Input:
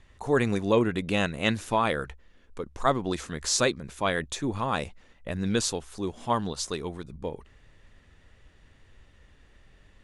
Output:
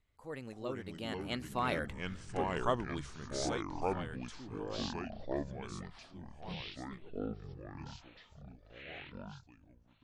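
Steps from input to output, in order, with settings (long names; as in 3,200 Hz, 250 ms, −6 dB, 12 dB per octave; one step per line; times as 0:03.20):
source passing by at 0:02.15, 33 m/s, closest 3 metres
delay with pitch and tempo change per echo 270 ms, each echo −5 semitones, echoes 3
level +6.5 dB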